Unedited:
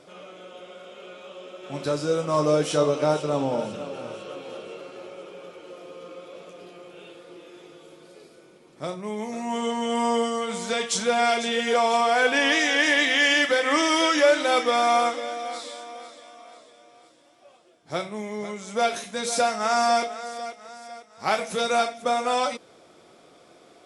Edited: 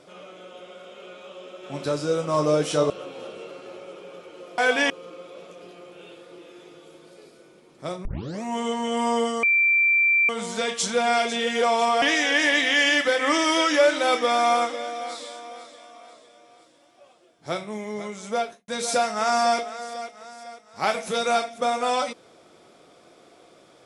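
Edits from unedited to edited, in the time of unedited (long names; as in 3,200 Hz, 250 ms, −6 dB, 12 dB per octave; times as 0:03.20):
0:02.90–0:04.20: remove
0:09.03: tape start 0.37 s
0:10.41: insert tone 2,350 Hz −16 dBFS 0.86 s
0:12.14–0:12.46: move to 0:05.88
0:18.70–0:19.12: fade out and dull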